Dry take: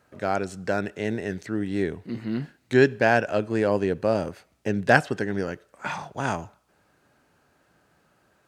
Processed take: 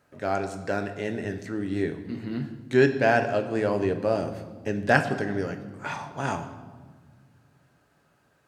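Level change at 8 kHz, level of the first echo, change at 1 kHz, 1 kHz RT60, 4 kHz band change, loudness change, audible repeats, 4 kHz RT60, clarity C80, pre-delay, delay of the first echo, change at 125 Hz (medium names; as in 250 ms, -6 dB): no reading, no echo, -1.0 dB, 1.4 s, -2.0 dB, -1.5 dB, no echo, 1.1 s, 12.5 dB, 7 ms, no echo, -1.0 dB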